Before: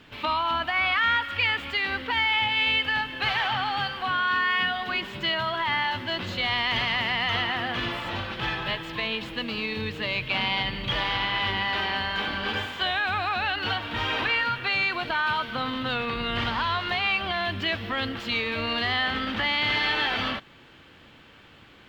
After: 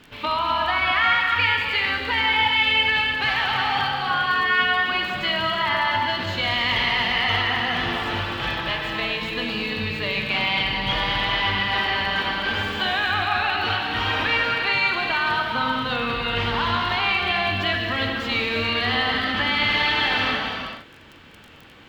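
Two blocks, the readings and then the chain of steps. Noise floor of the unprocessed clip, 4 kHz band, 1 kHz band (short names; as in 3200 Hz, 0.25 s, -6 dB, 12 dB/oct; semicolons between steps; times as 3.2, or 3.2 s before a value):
-52 dBFS, +4.0 dB, +4.5 dB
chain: non-linear reverb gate 0.47 s flat, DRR 0 dB; crackle 22/s -35 dBFS; gain +1.5 dB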